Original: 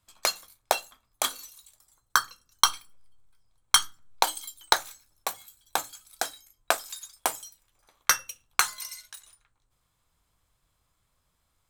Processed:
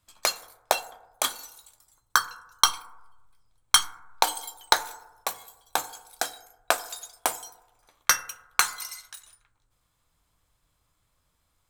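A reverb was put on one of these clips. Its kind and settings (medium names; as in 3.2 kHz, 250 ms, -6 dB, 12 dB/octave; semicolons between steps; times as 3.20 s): FDN reverb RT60 1 s, low-frequency decay 0.8×, high-frequency decay 0.3×, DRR 13 dB; trim +1 dB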